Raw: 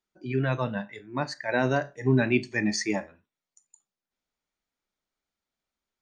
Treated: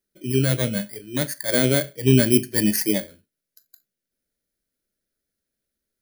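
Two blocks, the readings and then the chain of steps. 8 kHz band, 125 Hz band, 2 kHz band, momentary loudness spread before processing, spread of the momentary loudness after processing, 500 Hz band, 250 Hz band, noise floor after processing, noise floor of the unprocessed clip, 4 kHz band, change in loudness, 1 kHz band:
+12.0 dB, +6.5 dB, 0.0 dB, 9 LU, 10 LU, +5.0 dB, +6.5 dB, −85 dBFS, below −85 dBFS, +9.5 dB, +6.5 dB, −6.5 dB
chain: samples in bit-reversed order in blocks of 16 samples
flat-topped bell 940 Hz −14 dB 1 octave
level +6.5 dB

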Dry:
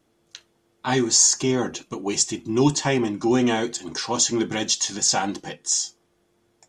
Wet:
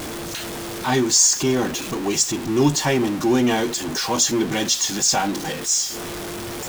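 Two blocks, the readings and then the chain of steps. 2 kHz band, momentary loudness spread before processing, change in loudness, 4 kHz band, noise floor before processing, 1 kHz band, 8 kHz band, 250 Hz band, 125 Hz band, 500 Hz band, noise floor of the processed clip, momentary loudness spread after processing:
+3.5 dB, 13 LU, +1.5 dB, +2.5 dB, −67 dBFS, +3.0 dB, +2.0 dB, +2.5 dB, +2.5 dB, +2.5 dB, −31 dBFS, 13 LU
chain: converter with a step at zero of −24.5 dBFS

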